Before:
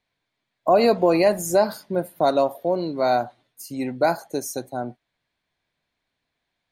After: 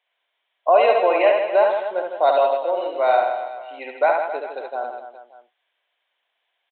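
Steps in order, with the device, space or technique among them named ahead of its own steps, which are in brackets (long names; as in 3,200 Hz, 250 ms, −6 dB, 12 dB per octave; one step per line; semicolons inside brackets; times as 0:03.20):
musical greeting card (downsampling to 8,000 Hz; high-pass filter 520 Hz 24 dB per octave; parametric band 3,000 Hz +8.5 dB 0.24 octaves)
reverse bouncing-ball delay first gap 70 ms, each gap 1.25×, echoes 5
level +2.5 dB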